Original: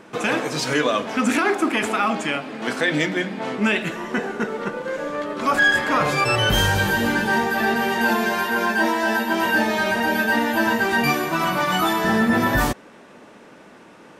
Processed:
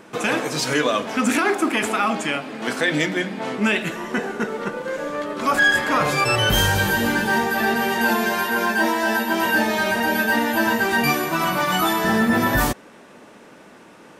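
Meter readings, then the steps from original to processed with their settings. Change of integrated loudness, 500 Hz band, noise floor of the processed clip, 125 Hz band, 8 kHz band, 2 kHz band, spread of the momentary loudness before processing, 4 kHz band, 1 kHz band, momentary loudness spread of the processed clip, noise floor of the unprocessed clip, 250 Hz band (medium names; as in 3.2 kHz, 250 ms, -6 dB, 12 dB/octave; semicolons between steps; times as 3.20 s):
+0.5 dB, 0.0 dB, -46 dBFS, 0.0 dB, +3.0 dB, 0.0 dB, 8 LU, +1.0 dB, 0.0 dB, 9 LU, -46 dBFS, 0.0 dB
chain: treble shelf 8.2 kHz +7 dB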